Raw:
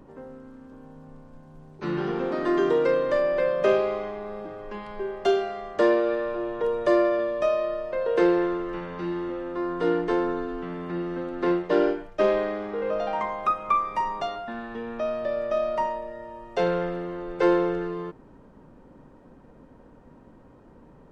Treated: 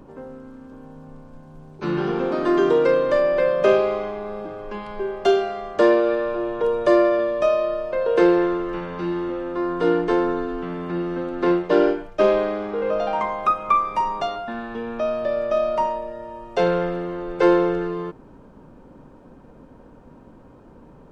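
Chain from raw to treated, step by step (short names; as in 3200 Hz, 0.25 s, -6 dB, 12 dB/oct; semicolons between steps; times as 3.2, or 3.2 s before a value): notch 1900 Hz, Q 13; gain +4.5 dB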